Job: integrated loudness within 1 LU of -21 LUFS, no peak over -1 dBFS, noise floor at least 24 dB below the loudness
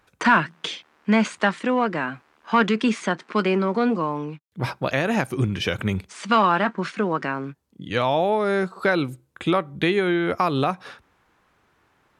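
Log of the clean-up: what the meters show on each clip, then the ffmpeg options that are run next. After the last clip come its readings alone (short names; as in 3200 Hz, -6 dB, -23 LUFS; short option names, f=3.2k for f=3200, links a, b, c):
loudness -23.0 LUFS; peak -6.5 dBFS; loudness target -21.0 LUFS
-> -af "volume=2dB"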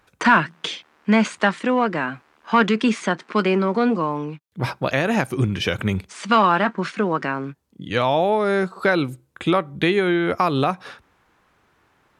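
loudness -21.0 LUFS; peak -4.5 dBFS; noise floor -62 dBFS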